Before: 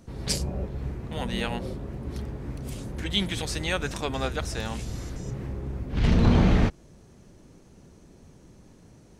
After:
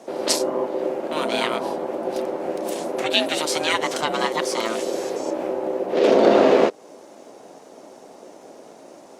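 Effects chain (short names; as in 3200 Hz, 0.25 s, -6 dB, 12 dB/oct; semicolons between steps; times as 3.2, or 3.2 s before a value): ring modulator 450 Hz; in parallel at 0 dB: compressor, threshold -32 dBFS, peak gain reduction 15 dB; on the sum: Bessel high-pass 280 Hz, order 4; gain +6.5 dB; Opus 64 kbps 48000 Hz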